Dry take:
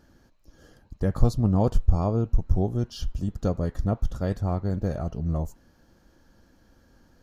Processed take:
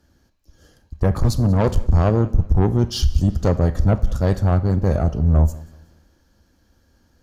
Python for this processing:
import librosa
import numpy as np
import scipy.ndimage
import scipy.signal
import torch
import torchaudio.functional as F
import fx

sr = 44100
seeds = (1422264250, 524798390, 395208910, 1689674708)

p1 = fx.tube_stage(x, sr, drive_db=24.0, bias=0.45)
p2 = fx.rev_schroeder(p1, sr, rt60_s=0.5, comb_ms=30, drr_db=15.0)
p3 = fx.rider(p2, sr, range_db=10, speed_s=0.5)
p4 = p2 + (p3 * librosa.db_to_amplitude(1.0))
p5 = fx.peak_eq(p4, sr, hz=75.0, db=7.0, octaves=0.55)
p6 = p5 + fx.echo_feedback(p5, sr, ms=188, feedback_pct=47, wet_db=-21, dry=0)
p7 = fx.band_widen(p6, sr, depth_pct=40)
y = p7 * librosa.db_to_amplitude(5.0)